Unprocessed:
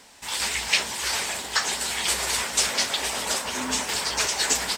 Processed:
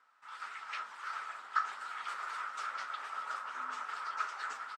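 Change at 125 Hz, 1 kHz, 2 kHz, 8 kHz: under -35 dB, -5.5 dB, -13.5 dB, -33.0 dB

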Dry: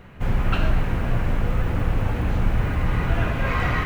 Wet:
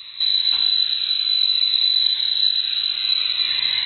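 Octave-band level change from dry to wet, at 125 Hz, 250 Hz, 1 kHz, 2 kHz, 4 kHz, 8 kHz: under -35 dB, under -30 dB, under -15 dB, -3.0 dB, +27.5 dB, no reading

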